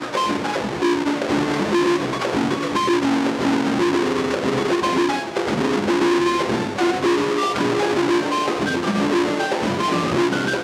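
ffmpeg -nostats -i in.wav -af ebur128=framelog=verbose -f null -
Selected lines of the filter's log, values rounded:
Integrated loudness:
  I:         -20.1 LUFS
  Threshold: -30.1 LUFS
Loudness range:
  LRA:         0.5 LU
  Threshold: -40.0 LUFS
  LRA low:   -20.1 LUFS
  LRA high:  -19.6 LUFS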